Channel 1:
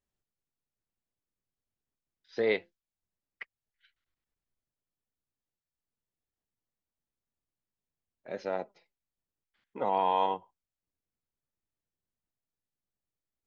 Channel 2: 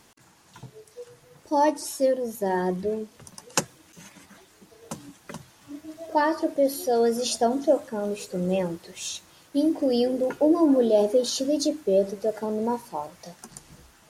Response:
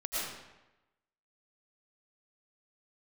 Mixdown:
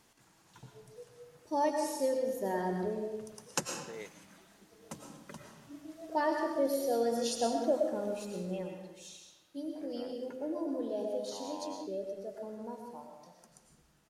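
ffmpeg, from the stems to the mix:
-filter_complex "[0:a]adelay=1500,volume=-18dB[a];[1:a]volume=-12.5dB,afade=t=out:st=8.06:d=0.67:silence=0.375837,asplit=2[b][c];[c]volume=-4dB[d];[2:a]atrim=start_sample=2205[e];[d][e]afir=irnorm=-1:irlink=0[f];[a][b][f]amix=inputs=3:normalize=0"

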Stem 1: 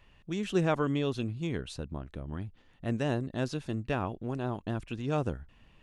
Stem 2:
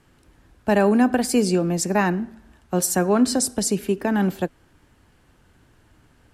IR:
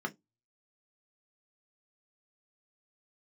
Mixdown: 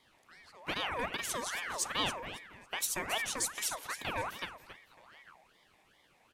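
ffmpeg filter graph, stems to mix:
-filter_complex "[0:a]acrossover=split=150[a][b];[b]acompressor=threshold=-42dB:ratio=4[c];[a][c]amix=inputs=2:normalize=0,volume=-8dB[d];[1:a]alimiter=limit=-12dB:level=0:latency=1:release=439,asoftclip=type=tanh:threshold=-14dB,volume=-4.5dB,asplit=3[e][f][g];[f]volume=-11.5dB[h];[g]apad=whole_len=256894[i];[d][i]sidechaincompress=threshold=-34dB:ratio=8:attack=16:release=1350[j];[h]aecho=0:1:275|550|825|1100:1|0.27|0.0729|0.0197[k];[j][e][k]amix=inputs=3:normalize=0,lowshelf=f=800:t=q:w=3:g=-8,aeval=exprs='val(0)*sin(2*PI*1400*n/s+1400*0.5/2.5*sin(2*PI*2.5*n/s))':c=same"

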